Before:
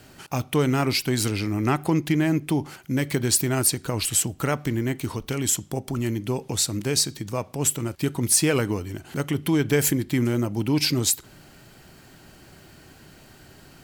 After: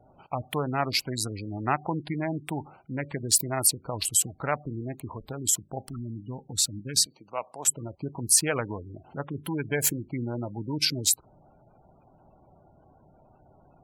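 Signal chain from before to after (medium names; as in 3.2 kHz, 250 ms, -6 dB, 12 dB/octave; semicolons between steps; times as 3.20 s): local Wiener filter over 25 samples; 5.87–7.11 s: time-frequency box 320–1100 Hz -7 dB; 7.06–7.68 s: frequency weighting A; spectral gate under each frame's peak -25 dB strong; resonant low shelf 510 Hz -8 dB, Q 1.5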